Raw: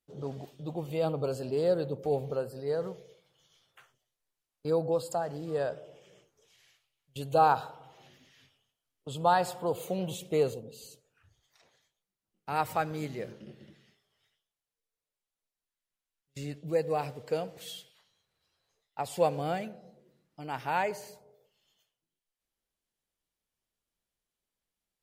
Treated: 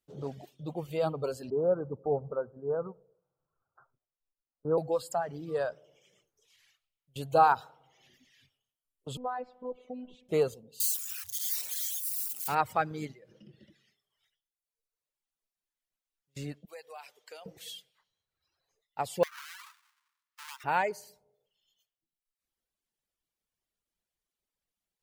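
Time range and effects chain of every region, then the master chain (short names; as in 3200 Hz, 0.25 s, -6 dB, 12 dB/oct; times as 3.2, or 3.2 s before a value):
1.5–4.78 steep low-pass 1500 Hz 96 dB/oct + echo 0.1 s -22 dB
9.17–10.29 compressor 1.5:1, threshold -35 dBFS + robotiser 251 Hz + tape spacing loss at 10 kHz 40 dB
10.8–12.55 switching spikes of -31.5 dBFS + high shelf 5000 Hz +10 dB
13.12–13.59 comb 6.3 ms, depth 51% + compressor 16:1, threshold -44 dBFS
16.65–17.46 Bessel high-pass 1300 Hz + compressor 3:1, threshold -43 dBFS
19.23–20.64 half-waves squared off + steep high-pass 950 Hz 72 dB/oct + compressor 12:1, threshold -39 dBFS
whole clip: reverb removal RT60 1.3 s; dynamic EQ 1300 Hz, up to +4 dB, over -44 dBFS, Q 1.3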